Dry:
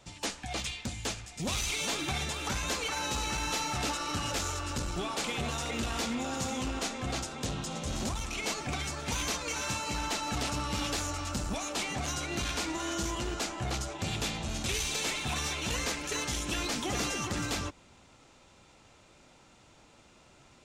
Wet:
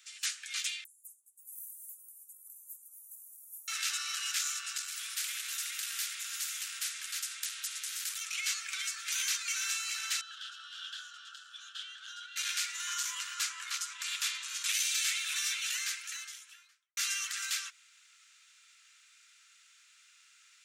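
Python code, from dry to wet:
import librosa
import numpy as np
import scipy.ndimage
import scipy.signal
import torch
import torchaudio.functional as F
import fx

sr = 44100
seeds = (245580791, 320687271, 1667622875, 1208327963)

y = fx.cheby2_bandstop(x, sr, low_hz=1600.0, high_hz=4500.0, order=4, stop_db=70, at=(0.84, 3.68))
y = fx.spectral_comp(y, sr, ratio=2.0, at=(4.88, 8.18))
y = fx.double_bandpass(y, sr, hz=2200.0, octaves=1.1, at=(10.21, 12.36))
y = fx.peak_eq(y, sr, hz=1000.0, db=11.5, octaves=0.57, at=(12.87, 14.72))
y = fx.studio_fade_out(y, sr, start_s=15.59, length_s=1.38)
y = scipy.signal.sosfilt(scipy.signal.butter(8, 1400.0, 'highpass', fs=sr, output='sos'), y)
y = fx.high_shelf(y, sr, hz=8000.0, db=8.5)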